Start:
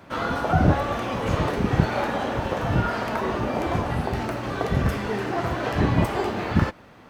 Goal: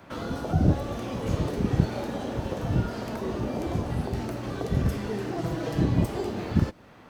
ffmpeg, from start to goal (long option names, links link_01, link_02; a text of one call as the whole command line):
ffmpeg -i in.wav -filter_complex "[0:a]asettb=1/sr,asplit=3[link_01][link_02][link_03];[link_01]atrim=end=5.384[link_04];[link_02]atrim=start=5.38:end=5.84,asetpts=PTS-STARTPTS,afade=type=in:duration=0.004:curve=qsin,afade=type=out:start_time=0.456:duration=0.004:curve=qsin,aecho=1:1:6.2:0.65,atrim=end_sample=20286[link_05];[link_03]atrim=start=5.836[link_06];[link_04][link_05]acrossfade=duration=0.004:curve1=hsin:curve2=qsin[link_07];[link_07][link_06]acrossfade=duration=0.004:curve1=qsin:curve2=hsin,acrossover=split=530|3800[link_08][link_09][link_10];[link_09]acompressor=threshold=-39dB:ratio=6[link_11];[link_08][link_11][link_10]amix=inputs=3:normalize=0,volume=-2dB" out.wav